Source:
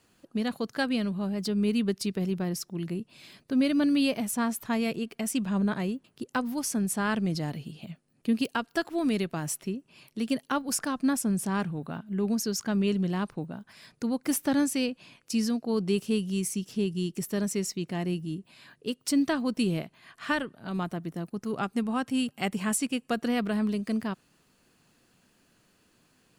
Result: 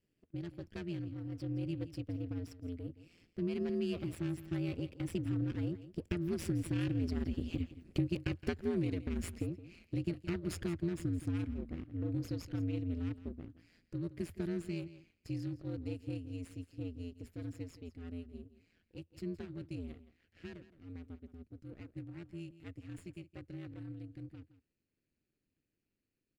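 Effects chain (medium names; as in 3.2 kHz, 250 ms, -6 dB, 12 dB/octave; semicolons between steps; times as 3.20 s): comb filter that takes the minimum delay 0.41 ms; Doppler pass-by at 7.95 s, 13 m/s, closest 6.5 m; low-pass 1.5 kHz 6 dB/octave; peaking EQ 840 Hz -13.5 dB 1.1 oct; compression 6:1, threshold -45 dBFS, peak gain reduction 20.5 dB; on a send: delay 168 ms -15.5 dB; on the sum: ring modulator 86 Hz; trim +15.5 dB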